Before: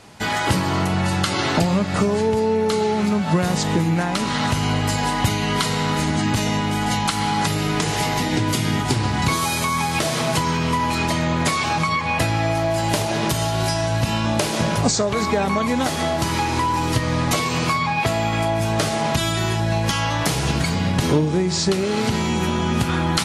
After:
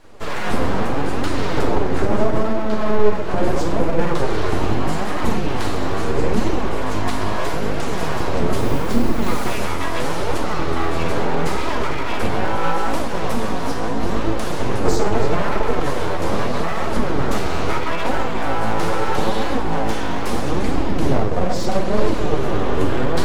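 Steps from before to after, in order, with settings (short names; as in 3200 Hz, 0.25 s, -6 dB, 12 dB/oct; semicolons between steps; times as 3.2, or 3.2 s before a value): 2.56–3.12 air absorption 89 m; 8.57–9.53 modulation noise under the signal 14 dB; tilt shelf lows +5.5 dB, about 1300 Hz; reverb RT60 1.4 s, pre-delay 4 ms, DRR -2.5 dB; full-wave rectifier; flange 0.77 Hz, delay 2.8 ms, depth 9.1 ms, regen +50%; gain -2.5 dB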